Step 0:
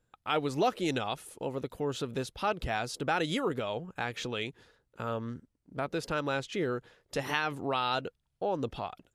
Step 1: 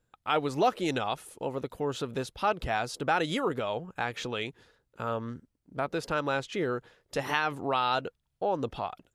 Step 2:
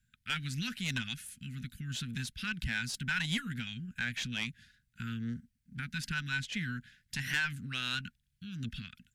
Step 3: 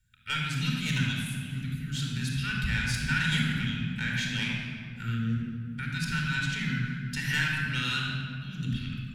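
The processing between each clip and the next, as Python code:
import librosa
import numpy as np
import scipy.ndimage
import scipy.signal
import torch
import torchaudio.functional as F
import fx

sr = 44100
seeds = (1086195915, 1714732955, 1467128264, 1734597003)

y1 = fx.dynamic_eq(x, sr, hz=950.0, q=0.74, threshold_db=-44.0, ratio=4.0, max_db=4)
y2 = scipy.signal.sosfilt(scipy.signal.cheby1(5, 1.0, [240.0, 1500.0], 'bandstop', fs=sr, output='sos'), y1)
y2 = fx.tube_stage(y2, sr, drive_db=26.0, bias=0.4)
y2 = F.gain(torch.from_numpy(y2), 3.5).numpy()
y3 = fx.room_shoebox(y2, sr, seeds[0], volume_m3=4000.0, walls='mixed', distance_m=4.5)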